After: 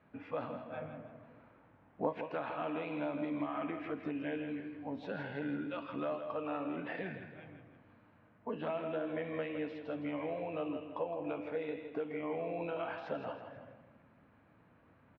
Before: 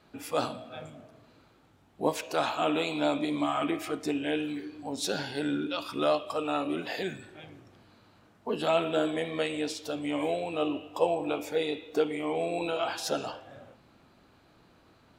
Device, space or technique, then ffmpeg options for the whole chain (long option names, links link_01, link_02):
bass amplifier: -filter_complex "[0:a]acompressor=threshold=-29dB:ratio=6,highpass=68,equalizer=frequency=370:width_type=q:width=4:gain=-9,equalizer=frequency=770:width_type=q:width=4:gain=-5,equalizer=frequency=1300:width_type=q:width=4:gain=-4,lowpass=frequency=2200:width=0.5412,lowpass=frequency=2200:width=1.3066,asettb=1/sr,asplit=3[link_01][link_02][link_03];[link_01]atrim=end=0.704[link_04];[link_02]atrim=start=0.7:end=2.13,asetpts=PTS-STARTPTS,afade=type=in:duration=0.004:curve=qsin,afade=type=out:start_time=1.426:duration=0.004:curve=qsin,equalizer=frequency=760:width=0.37:gain=5.5[link_05];[link_03]atrim=start=2.126[link_06];[link_04][link_05]acrossfade=duration=0.004:curve1=hsin:curve2=qsin[link_07];[link_07][link_06]acrossfade=duration=0.004:curve1=qsin:curve2=hsin,aecho=1:1:163|326|489|652:0.355|0.135|0.0512|0.0195,volume=-2.5dB"